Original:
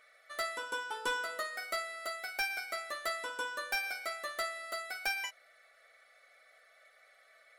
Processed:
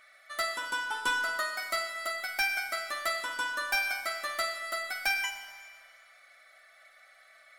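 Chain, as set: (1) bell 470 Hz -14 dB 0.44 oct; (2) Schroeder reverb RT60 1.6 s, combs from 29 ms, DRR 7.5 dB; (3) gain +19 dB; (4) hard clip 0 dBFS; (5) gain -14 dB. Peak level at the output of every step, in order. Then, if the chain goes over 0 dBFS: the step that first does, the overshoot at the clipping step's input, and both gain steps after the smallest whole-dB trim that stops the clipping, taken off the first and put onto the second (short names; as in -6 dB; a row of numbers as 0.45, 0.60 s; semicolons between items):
-25.0, -24.5, -5.5, -5.5, -19.5 dBFS; no overload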